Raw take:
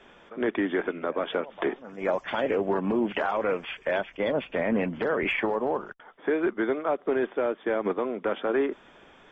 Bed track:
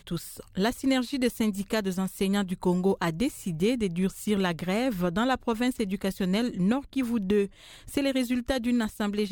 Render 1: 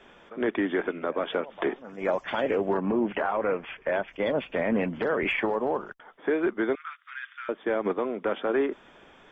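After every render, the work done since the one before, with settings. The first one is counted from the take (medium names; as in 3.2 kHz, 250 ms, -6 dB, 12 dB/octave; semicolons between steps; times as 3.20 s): 2.77–4.08 s: low-pass 2.3 kHz; 6.75–7.49 s: steep high-pass 1.3 kHz 48 dB/octave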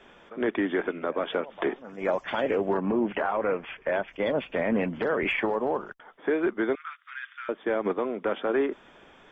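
no audible change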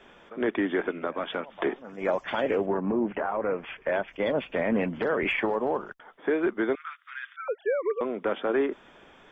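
1.07–1.59 s: peaking EQ 440 Hz -7 dB 0.87 oct; 2.66–3.58 s: distance through air 490 m; 7.36–8.01 s: formants replaced by sine waves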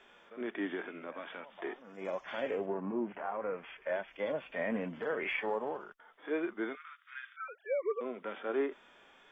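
harmonic-percussive split percussive -17 dB; bass shelf 450 Hz -11 dB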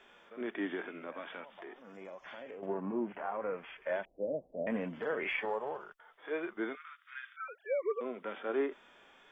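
1.48–2.63 s: compression 4:1, threshold -45 dBFS; 4.05–4.67 s: steep low-pass 690 Hz 48 dB/octave; 5.45–6.57 s: peaking EQ 260 Hz -13.5 dB 0.53 oct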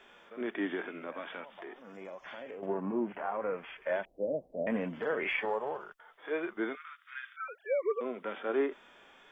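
trim +2.5 dB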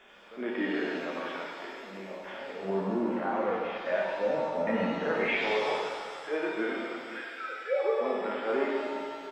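frequency-shifting echo 118 ms, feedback 50%, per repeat -30 Hz, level -21 dB; pitch-shifted reverb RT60 1.9 s, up +7 st, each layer -8 dB, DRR -2.5 dB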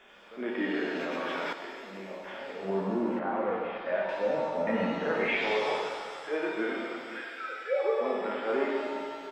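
0.96–1.53 s: level flattener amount 100%; 3.19–4.09 s: distance through air 210 m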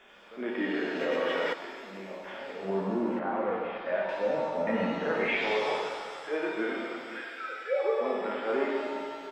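1.01–1.54 s: small resonant body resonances 490/1900/2900 Hz, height 13 dB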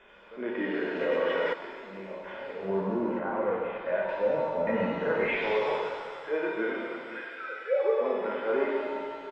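tone controls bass +4 dB, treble -13 dB; comb 2 ms, depth 35%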